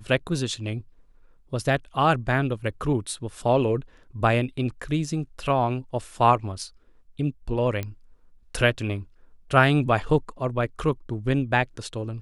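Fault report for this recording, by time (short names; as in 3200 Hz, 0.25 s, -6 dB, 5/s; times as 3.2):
7.83 pop -17 dBFS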